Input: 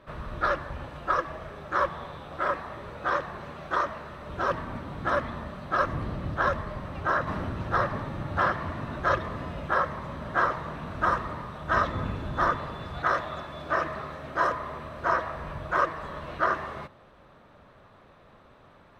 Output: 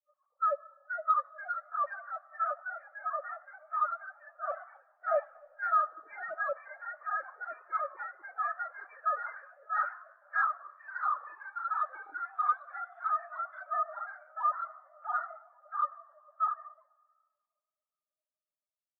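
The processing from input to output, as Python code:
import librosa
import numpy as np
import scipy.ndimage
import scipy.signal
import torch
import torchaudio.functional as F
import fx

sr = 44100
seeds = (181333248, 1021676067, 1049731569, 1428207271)

y = fx.sine_speech(x, sr)
y = 10.0 ** (-23.5 / 20.0) * np.tanh(y / 10.0 ** (-23.5 / 20.0))
y = fx.rev_freeverb(y, sr, rt60_s=4.1, hf_ratio=0.95, predelay_ms=30, drr_db=7.0)
y = fx.echo_pitch(y, sr, ms=524, semitones=2, count=3, db_per_echo=-3.0)
y = fx.spectral_expand(y, sr, expansion=2.5)
y = y * 10.0 ** (-2.0 / 20.0)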